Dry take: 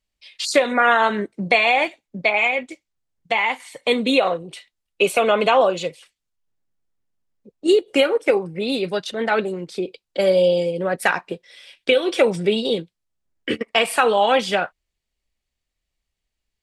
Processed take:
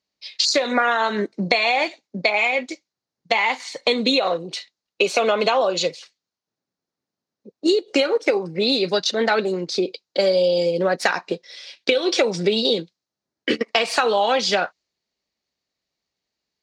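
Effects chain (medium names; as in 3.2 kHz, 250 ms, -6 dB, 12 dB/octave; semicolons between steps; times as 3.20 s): median filter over 3 samples; high-pass 190 Hz 12 dB/octave; high-order bell 5.2 kHz +12 dB 1 oct; compression, threshold -20 dBFS, peak gain reduction 10 dB; distance through air 53 m; tape noise reduction on one side only decoder only; trim +5 dB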